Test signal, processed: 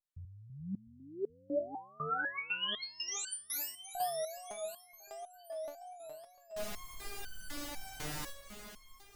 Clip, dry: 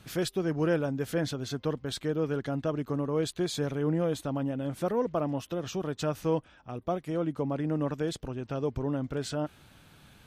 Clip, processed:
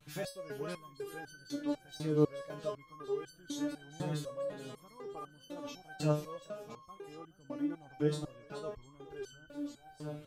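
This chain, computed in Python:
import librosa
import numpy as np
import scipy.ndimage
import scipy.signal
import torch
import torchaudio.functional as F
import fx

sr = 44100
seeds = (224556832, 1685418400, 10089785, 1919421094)

y = fx.echo_swing(x, sr, ms=705, ratio=1.5, feedback_pct=49, wet_db=-10.5)
y = fx.wow_flutter(y, sr, seeds[0], rate_hz=2.1, depth_cents=120.0)
y = fx.resonator_held(y, sr, hz=4.0, low_hz=150.0, high_hz=1500.0)
y = F.gain(torch.from_numpy(y), 6.0).numpy()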